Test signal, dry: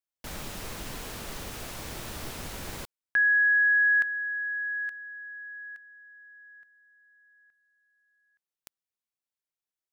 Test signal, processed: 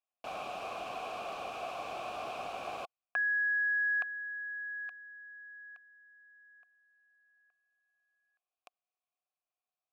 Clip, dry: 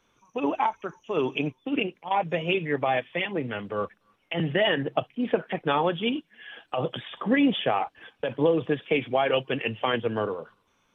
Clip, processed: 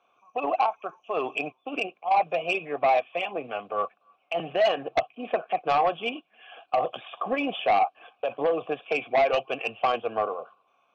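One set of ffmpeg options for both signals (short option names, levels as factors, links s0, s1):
-filter_complex "[0:a]asplit=3[s0][s1][s2];[s0]bandpass=f=730:t=q:w=8,volume=1[s3];[s1]bandpass=f=1090:t=q:w=8,volume=0.501[s4];[s2]bandpass=f=2440:t=q:w=8,volume=0.355[s5];[s3][s4][s5]amix=inputs=3:normalize=0,aeval=exprs='0.133*(cos(1*acos(clip(val(0)/0.133,-1,1)))-cos(1*PI/2))+0.0473*(cos(5*acos(clip(val(0)/0.133,-1,1)))-cos(5*PI/2))':c=same,volume=1.58"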